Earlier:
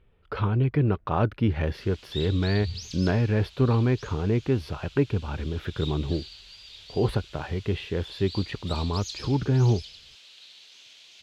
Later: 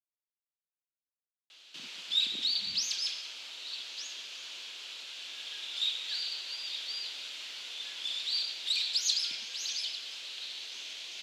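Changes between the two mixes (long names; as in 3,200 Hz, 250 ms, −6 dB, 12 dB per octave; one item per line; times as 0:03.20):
speech: muted
first sound +8.5 dB
master: add high-pass filter 220 Hz 24 dB per octave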